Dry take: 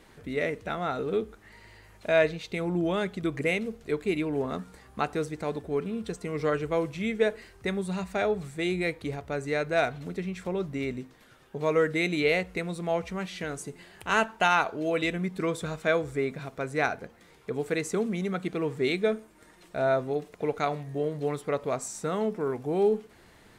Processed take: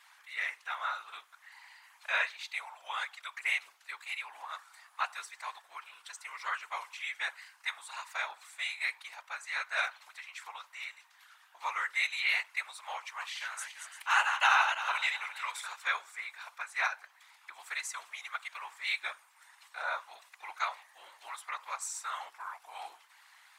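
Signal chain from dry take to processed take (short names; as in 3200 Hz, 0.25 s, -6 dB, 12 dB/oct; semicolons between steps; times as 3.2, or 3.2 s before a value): 13.03–15.73 regenerating reverse delay 0.172 s, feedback 50%, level -6 dB; elliptic high-pass 920 Hz, stop band 60 dB; whisperiser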